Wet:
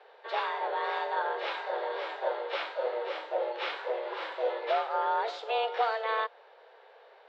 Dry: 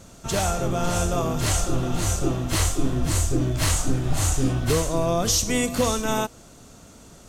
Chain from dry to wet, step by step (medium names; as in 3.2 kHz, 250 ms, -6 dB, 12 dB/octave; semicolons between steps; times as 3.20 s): formant shift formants +3 st; mistuned SSB +230 Hz 220–3500 Hz; trim -5 dB